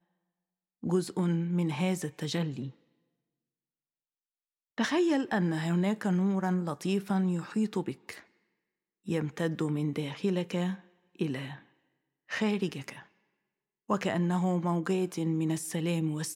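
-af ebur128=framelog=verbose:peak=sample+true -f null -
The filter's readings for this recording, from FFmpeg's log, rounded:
Integrated loudness:
  I:         -30.9 LUFS
  Threshold: -41.5 LUFS
Loudness range:
  LRA:         6.1 LU
  Threshold: -52.7 LUFS
  LRA low:   -35.8 LUFS
  LRA high:  -29.7 LUFS
Sample peak:
  Peak:      -14.5 dBFS
True peak:
  Peak:      -14.5 dBFS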